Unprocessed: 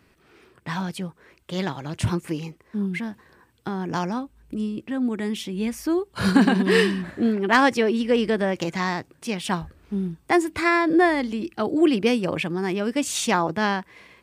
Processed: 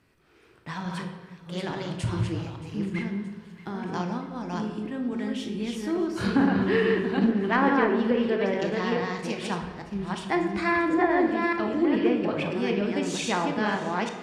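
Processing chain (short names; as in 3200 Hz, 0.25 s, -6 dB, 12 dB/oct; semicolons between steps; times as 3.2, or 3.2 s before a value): reverse delay 0.427 s, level -2 dB; treble ducked by the level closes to 1900 Hz, closed at -12.5 dBFS; thin delay 0.624 s, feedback 66%, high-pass 1400 Hz, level -18 dB; on a send at -4 dB: reverb RT60 1.4 s, pre-delay 18 ms; on the sum: gain -6.5 dB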